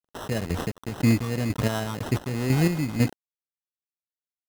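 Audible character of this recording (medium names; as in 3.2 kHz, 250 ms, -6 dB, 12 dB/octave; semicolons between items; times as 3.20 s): chopped level 2 Hz, depth 60%, duty 35%; a quantiser's noise floor 6-bit, dither none; phasing stages 4, 3 Hz, lowest notch 620–3600 Hz; aliases and images of a low sample rate 2.3 kHz, jitter 0%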